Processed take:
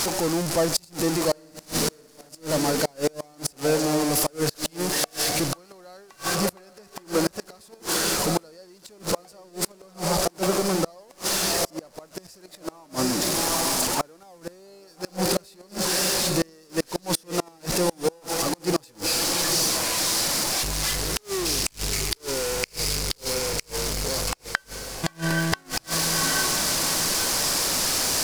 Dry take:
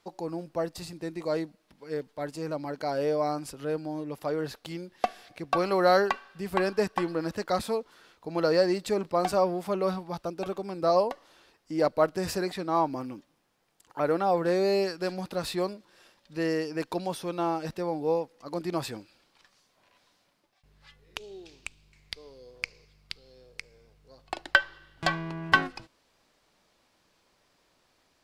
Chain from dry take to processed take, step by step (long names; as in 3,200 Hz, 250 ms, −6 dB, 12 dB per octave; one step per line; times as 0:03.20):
converter with a step at zero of −28 dBFS
flat-topped bell 7,500 Hz +9.5 dB
0:01.27–0:02.29: flutter between parallel walls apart 9.6 metres, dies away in 1.2 s
0:24.34–0:25.04: noise gate −22 dBFS, range −15 dB
on a send: feedback delay with all-pass diffusion 800 ms, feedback 40%, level −9 dB
on the sum: gate with flip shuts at −16 dBFS, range −31 dB
level +4.5 dB